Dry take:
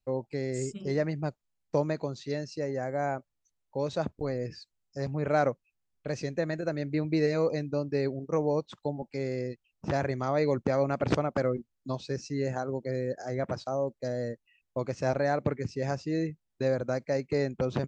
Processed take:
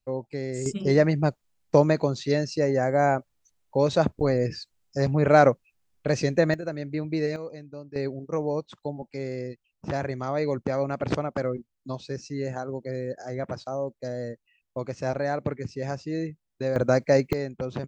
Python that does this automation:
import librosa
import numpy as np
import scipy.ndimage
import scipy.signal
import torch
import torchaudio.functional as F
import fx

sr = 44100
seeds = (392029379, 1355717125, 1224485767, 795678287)

y = fx.gain(x, sr, db=fx.steps((0.0, 1.0), (0.66, 9.0), (6.54, -0.5), (7.36, -10.0), (7.96, 0.0), (16.76, 9.5), (17.33, -2.0)))